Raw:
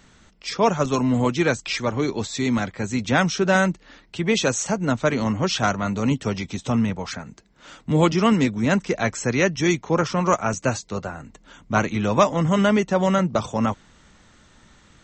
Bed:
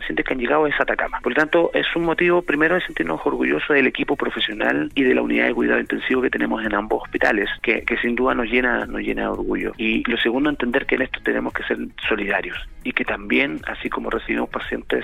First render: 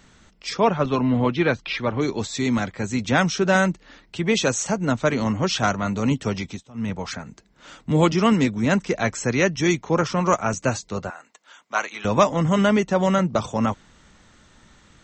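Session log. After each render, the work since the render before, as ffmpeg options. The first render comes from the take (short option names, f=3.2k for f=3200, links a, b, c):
-filter_complex "[0:a]asettb=1/sr,asplit=3[a][b][c];[a]atrim=end=0.604[d];[b]atrim=start=0.6:end=2.01,asetpts=PTS-STARTPTS,afade=t=in:d=0.004:c=qsin,afade=t=out:st=1.406:d=0.004:c=qsin,lowpass=f=4.1k:w=0.5412,lowpass=f=4.1k:w=1.3066[e];[c]atrim=start=2.006[f];[d][e]acrossfade=d=0.004:c1=hsin:c2=qsin[g];[g][f]acrossfade=d=0.004:c1=qsin:c2=hsin,asettb=1/sr,asplit=3[h][i][j];[h]atrim=end=11.104[k];[i]atrim=start=11.1:end=12.05,asetpts=PTS-STARTPTS,afade=t=in:d=0.004:c=qsin,afade=t=out:st=0.946:d=0.004:c=qsin,highpass=790[l];[j]atrim=start=12.046[m];[k][l]acrossfade=d=0.004:c1=hsin:c2=qsin[n];[n][m]acrossfade=d=0.004:c1=qsin:c2=hsin,asplit=3[o][p][q];[o]atrim=end=6.66,asetpts=PTS-STARTPTS,afade=t=out:st=6.39:d=0.27:c=qsin:silence=0.0707946[r];[p]atrim=start=6.66:end=6.74,asetpts=PTS-STARTPTS,volume=-23dB[s];[q]atrim=start=6.74,asetpts=PTS-STARTPTS,afade=t=in:d=0.27:c=qsin:silence=0.0707946[t];[r][s][t]concat=n=3:v=0:a=1"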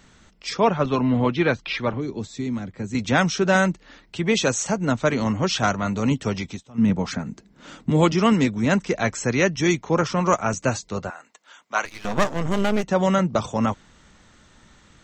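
-filter_complex "[0:a]asettb=1/sr,asplit=3[a][b][c];[a]atrim=end=1.934[d];[b]atrim=start=1.93:end=2.95,asetpts=PTS-STARTPTS,afade=t=in:d=0.004:c=qsin,afade=t=out:st=1.016:d=0.004:c=qsin,acrossover=split=87|410[e][f][g];[e]acompressor=threshold=-48dB:ratio=4[h];[f]acompressor=threshold=-25dB:ratio=4[i];[g]acompressor=threshold=-42dB:ratio=4[j];[h][i][j]amix=inputs=3:normalize=0[k];[c]atrim=start=2.946[l];[d][k]acrossfade=d=0.004:c1=hsin:c2=qsin[m];[m][l]acrossfade=d=0.004:c1=qsin:c2=hsin,asettb=1/sr,asplit=3[n][o][p];[n]atrim=end=6.784[q];[o]atrim=start=6.78:end=7.9,asetpts=PTS-STARTPTS,afade=t=in:d=0.004:c=qsin,afade=t=out:st=1.116:d=0.004:c=qsin,equalizer=f=220:w=0.75:g=9.5[r];[p]atrim=start=7.896[s];[q][r]acrossfade=d=0.004:c1=hsin:c2=qsin[t];[t][s]acrossfade=d=0.004:c1=qsin:c2=hsin,asettb=1/sr,asplit=3[u][v][w];[u]atrim=end=11.854[x];[v]atrim=start=11.85:end=12.84,asetpts=PTS-STARTPTS,afade=t=in:d=0.004:c=qsin,afade=t=out:st=0.986:d=0.004:c=qsin,aeval=exprs='max(val(0),0)':c=same[y];[w]atrim=start=12.836[z];[x][y]acrossfade=d=0.004:c1=hsin:c2=qsin[aa];[aa][z]acrossfade=d=0.004:c1=qsin:c2=hsin"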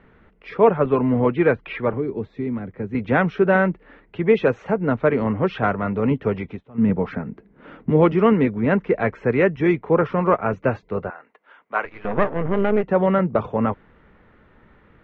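-af "lowpass=f=2.3k:w=0.5412,lowpass=f=2.3k:w=1.3066,equalizer=f=440:t=o:w=0.49:g=8"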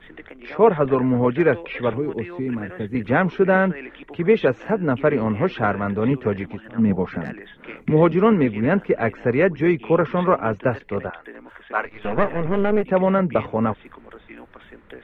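-filter_complex "[1:a]volume=-19.5dB[a];[0:a][a]amix=inputs=2:normalize=0"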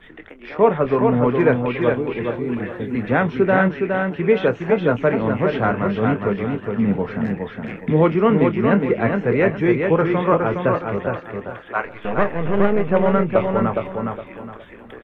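-filter_complex "[0:a]asplit=2[a][b];[b]adelay=25,volume=-11.5dB[c];[a][c]amix=inputs=2:normalize=0,aecho=1:1:414|828|1242|1656:0.596|0.179|0.0536|0.0161"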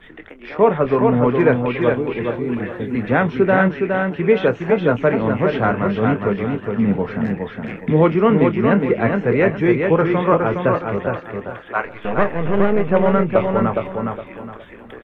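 -af "volume=1.5dB,alimiter=limit=-3dB:level=0:latency=1"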